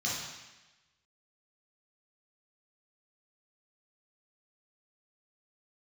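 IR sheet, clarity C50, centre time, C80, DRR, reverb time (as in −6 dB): 0.0 dB, 75 ms, 3.5 dB, −6.5 dB, 1.1 s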